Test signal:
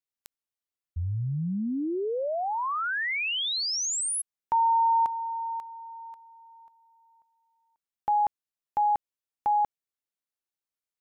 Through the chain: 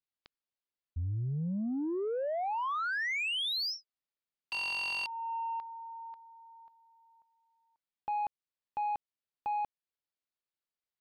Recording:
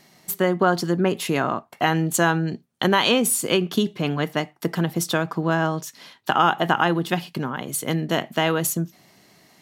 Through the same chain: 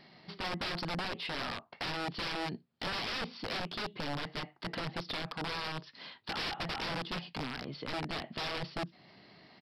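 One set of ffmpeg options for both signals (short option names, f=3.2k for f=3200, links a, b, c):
-af "aresample=11025,aeval=exprs='(mod(10*val(0)+1,2)-1)/10':c=same,aresample=44100,alimiter=level_in=0.5dB:limit=-24dB:level=0:latency=1:release=294,volume=-0.5dB,asoftclip=type=tanh:threshold=-25.5dB,volume=-2.5dB"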